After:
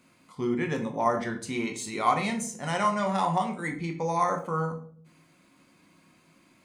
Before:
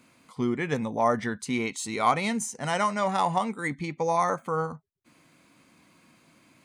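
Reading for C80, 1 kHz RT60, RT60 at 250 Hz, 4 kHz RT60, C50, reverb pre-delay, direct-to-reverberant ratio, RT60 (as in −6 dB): 14.5 dB, 0.45 s, 0.85 s, 0.40 s, 10.0 dB, 3 ms, 3.0 dB, 0.55 s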